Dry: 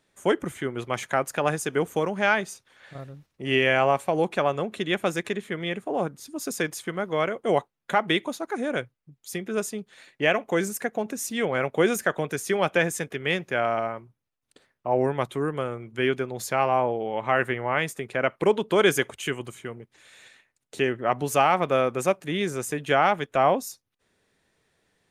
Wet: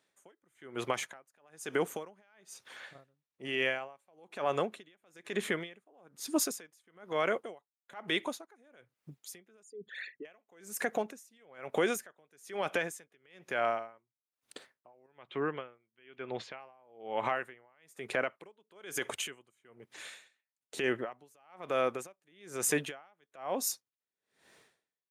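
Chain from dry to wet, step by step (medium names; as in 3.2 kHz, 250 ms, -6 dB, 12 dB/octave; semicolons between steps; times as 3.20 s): 9.63–10.25 s: resonances exaggerated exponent 3; compression 10:1, threshold -26 dBFS, peak gain reduction 12 dB; 15.06–16.60 s: four-pole ladder low-pass 3.6 kHz, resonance 40%; level rider gain up to 14.5 dB; high-pass 390 Hz 6 dB/octave; peak limiter -13 dBFS, peak gain reduction 10.5 dB; logarithmic tremolo 1.1 Hz, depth 37 dB; trim -4.5 dB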